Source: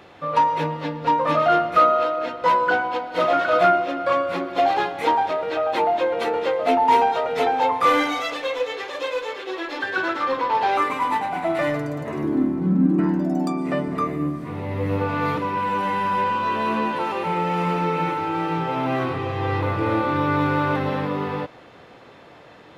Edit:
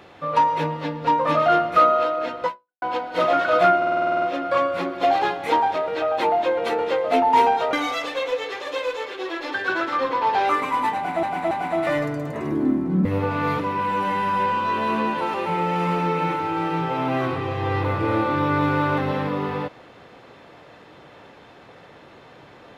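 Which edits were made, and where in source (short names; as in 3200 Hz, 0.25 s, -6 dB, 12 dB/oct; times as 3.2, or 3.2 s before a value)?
2.45–2.82 fade out exponential
3.77 stutter 0.05 s, 10 plays
7.28–8.01 cut
11.23–11.51 loop, 3 plays
12.77–14.83 cut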